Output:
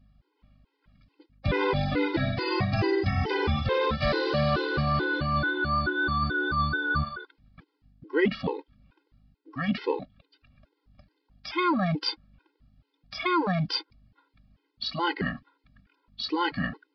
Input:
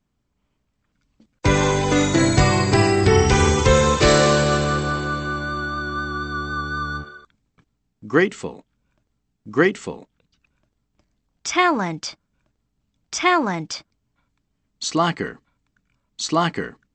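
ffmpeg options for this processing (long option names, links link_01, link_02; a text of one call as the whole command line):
ffmpeg -i in.wav -af "areverse,acompressor=threshold=-28dB:ratio=8,areverse,aresample=11025,aresample=44100,aeval=exprs='val(0)+0.000447*(sin(2*PI*50*n/s)+sin(2*PI*2*50*n/s)/2+sin(2*PI*3*50*n/s)/3+sin(2*PI*4*50*n/s)/4+sin(2*PI*5*50*n/s)/5)':channel_layout=same,afftfilt=real='re*gt(sin(2*PI*2.3*pts/sr)*(1-2*mod(floor(b*sr/1024/270),2)),0)':imag='im*gt(sin(2*PI*2.3*pts/sr)*(1-2*mod(floor(b*sr/1024/270),2)),0)':win_size=1024:overlap=0.75,volume=8dB" out.wav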